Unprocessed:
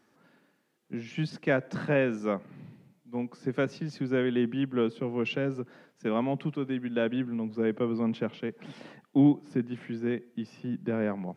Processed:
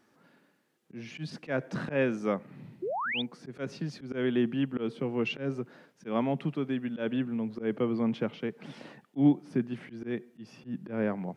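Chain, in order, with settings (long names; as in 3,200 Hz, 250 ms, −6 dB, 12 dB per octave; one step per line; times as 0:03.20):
volume swells 121 ms
sound drawn into the spectrogram rise, 0:02.82–0:03.22, 330–3,800 Hz −32 dBFS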